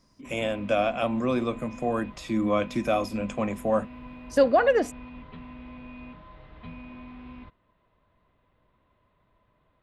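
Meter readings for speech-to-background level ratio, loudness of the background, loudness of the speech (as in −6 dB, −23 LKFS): 18.0 dB, −44.5 LKFS, −26.5 LKFS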